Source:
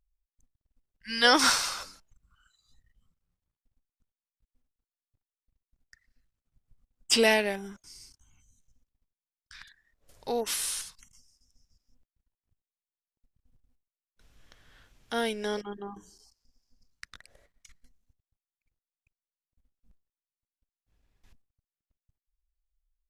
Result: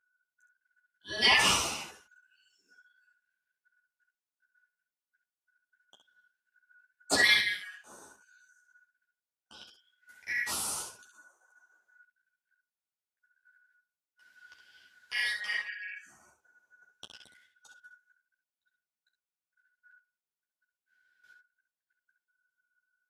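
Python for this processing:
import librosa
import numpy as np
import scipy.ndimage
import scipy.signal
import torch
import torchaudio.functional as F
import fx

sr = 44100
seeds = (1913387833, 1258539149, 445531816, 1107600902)

y = fx.band_shuffle(x, sr, order='4123')
y = scipy.signal.sosfilt(scipy.signal.butter(2, 61.0, 'highpass', fs=sr, output='sos'), y)
y = fx.room_early_taps(y, sr, ms=(26, 66), db=(-16.0, -7.0))
y = fx.ensemble(y, sr)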